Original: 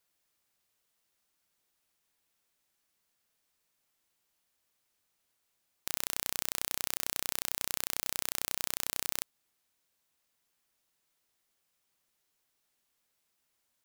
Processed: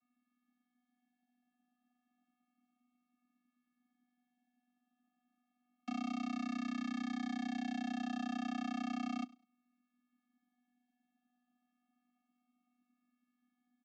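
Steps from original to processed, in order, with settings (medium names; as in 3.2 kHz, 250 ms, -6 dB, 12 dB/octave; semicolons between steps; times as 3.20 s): local Wiener filter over 9 samples; treble shelf 4.8 kHz -6.5 dB; comb of notches 190 Hz; vocoder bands 16, square 246 Hz; distance through air 96 m; feedback delay 101 ms, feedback 22%, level -22 dB; Shepard-style phaser falling 0.31 Hz; trim +7 dB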